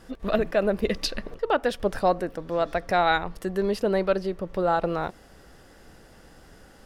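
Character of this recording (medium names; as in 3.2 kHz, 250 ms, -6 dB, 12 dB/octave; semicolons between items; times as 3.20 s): noise floor -52 dBFS; spectral tilt -3.5 dB/octave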